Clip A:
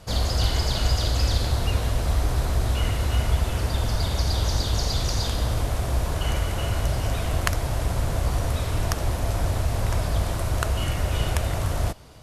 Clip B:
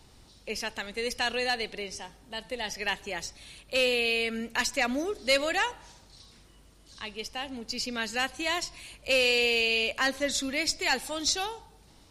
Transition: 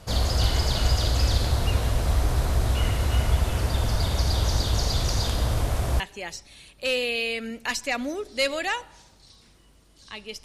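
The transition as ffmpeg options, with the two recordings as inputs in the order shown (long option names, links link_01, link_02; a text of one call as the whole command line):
ffmpeg -i cue0.wav -i cue1.wav -filter_complex "[0:a]apad=whole_dur=10.44,atrim=end=10.44,atrim=end=6.002[link_01];[1:a]atrim=start=2.898:end=7.34[link_02];[link_01][link_02]acrossfade=duration=0.004:curve1=hsin:curve2=hsin" out.wav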